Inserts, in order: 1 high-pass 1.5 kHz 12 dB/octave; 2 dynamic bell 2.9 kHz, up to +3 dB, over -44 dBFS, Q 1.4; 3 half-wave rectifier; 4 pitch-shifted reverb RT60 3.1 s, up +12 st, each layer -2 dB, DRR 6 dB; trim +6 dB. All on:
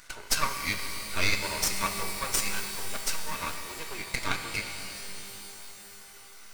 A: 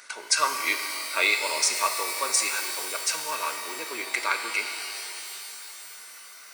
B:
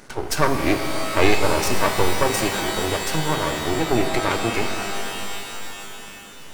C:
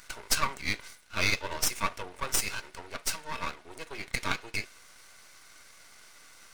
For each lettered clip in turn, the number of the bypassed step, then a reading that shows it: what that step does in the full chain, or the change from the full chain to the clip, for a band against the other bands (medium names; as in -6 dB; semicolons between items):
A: 3, 250 Hz band -9.0 dB; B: 1, 8 kHz band -10.0 dB; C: 4, momentary loudness spread change -4 LU